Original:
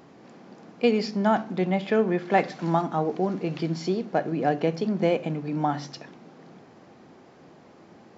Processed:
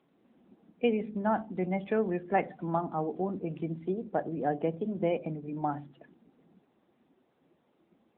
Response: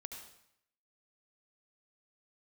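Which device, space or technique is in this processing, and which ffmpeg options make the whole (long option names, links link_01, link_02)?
mobile call with aggressive noise cancelling: -af "highpass=120,afftdn=noise_reduction=13:noise_floor=-35,volume=-5.5dB" -ar 8000 -c:a libopencore_amrnb -b:a 10200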